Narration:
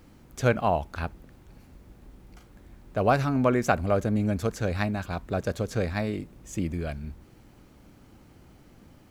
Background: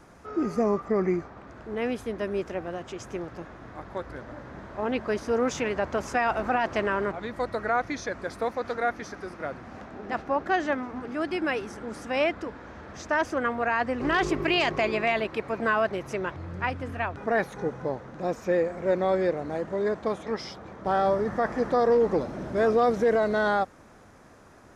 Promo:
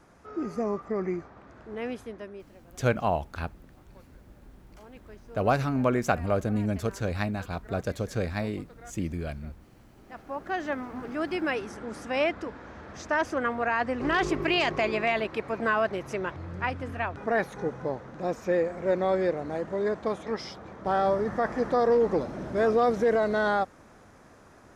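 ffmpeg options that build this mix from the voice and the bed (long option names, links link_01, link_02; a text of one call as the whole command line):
ffmpeg -i stem1.wav -i stem2.wav -filter_complex "[0:a]adelay=2400,volume=-2dB[link_01];[1:a]volume=16dB,afade=type=out:start_time=1.93:duration=0.57:silence=0.141254,afade=type=in:start_time=9.98:duration=1.07:silence=0.0891251[link_02];[link_01][link_02]amix=inputs=2:normalize=0" out.wav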